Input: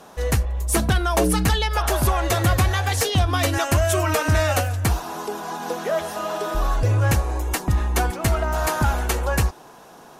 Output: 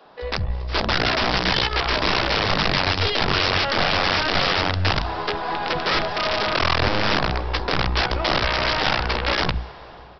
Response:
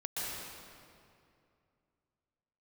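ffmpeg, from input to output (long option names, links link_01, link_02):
-filter_complex "[0:a]bandreject=frequency=60:width_type=h:width=6,bandreject=frequency=120:width_type=h:width=6,bandreject=frequency=180:width_type=h:width=6,bandreject=frequency=240:width_type=h:width=6,bandreject=frequency=300:width_type=h:width=6,bandreject=frequency=360:width_type=h:width=6,dynaudnorm=framelen=310:gausssize=3:maxgain=9dB,aeval=exprs='(tanh(7.08*val(0)+0.7)-tanh(0.7))/7.08':channel_layout=same,aresample=11025,aeval=exprs='(mod(5.31*val(0)+1,2)-1)/5.31':channel_layout=same,aresample=44100,acrossover=split=230[link_01][link_02];[link_01]adelay=50[link_03];[link_03][link_02]amix=inputs=2:normalize=0,asplit=2[link_04][link_05];[1:a]atrim=start_sample=2205,asetrate=30429,aresample=44100[link_06];[link_05][link_06]afir=irnorm=-1:irlink=0,volume=-27dB[link_07];[link_04][link_07]amix=inputs=2:normalize=0"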